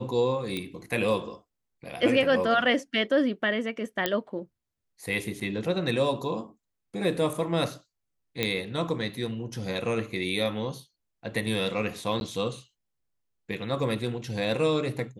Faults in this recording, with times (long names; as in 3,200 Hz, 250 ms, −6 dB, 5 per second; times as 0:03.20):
0:00.57: click −18 dBFS
0:04.06: click −9 dBFS
0:05.40–0:05.41: drop-out 6.9 ms
0:08.43: click −11 dBFS
0:12.20–0:12.21: drop-out 11 ms